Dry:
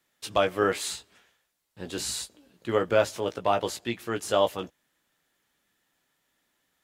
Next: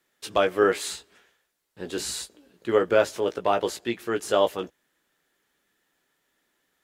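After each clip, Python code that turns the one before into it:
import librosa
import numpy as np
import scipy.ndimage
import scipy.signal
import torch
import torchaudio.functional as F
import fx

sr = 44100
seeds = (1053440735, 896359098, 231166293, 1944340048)

y = fx.graphic_eq_15(x, sr, hz=(100, 400, 1600), db=(-5, 6, 3))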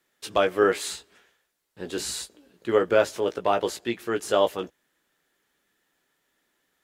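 y = x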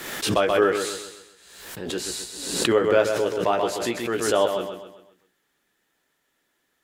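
y = fx.echo_feedback(x, sr, ms=130, feedback_pct=42, wet_db=-7.0)
y = fx.pre_swell(y, sr, db_per_s=52.0)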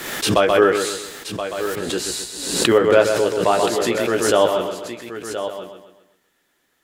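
y = x + 10.0 ** (-10.5 / 20.0) * np.pad(x, (int(1025 * sr / 1000.0), 0))[:len(x)]
y = F.gain(torch.from_numpy(y), 5.0).numpy()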